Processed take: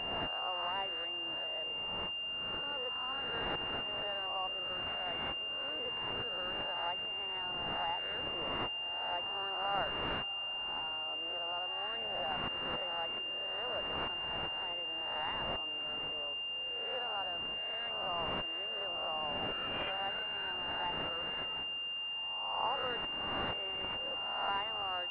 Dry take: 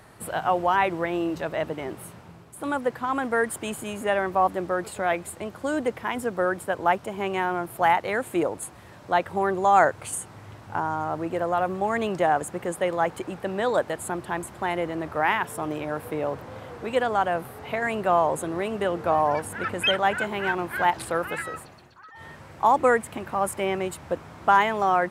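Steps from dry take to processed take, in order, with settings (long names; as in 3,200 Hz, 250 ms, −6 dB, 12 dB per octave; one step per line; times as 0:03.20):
peak hold with a rise ahead of every peak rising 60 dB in 1.20 s
elliptic high-pass filter 240 Hz
first difference
feedback delay with all-pass diffusion 682 ms, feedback 45%, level −15.5 dB
switching amplifier with a slow clock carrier 2,800 Hz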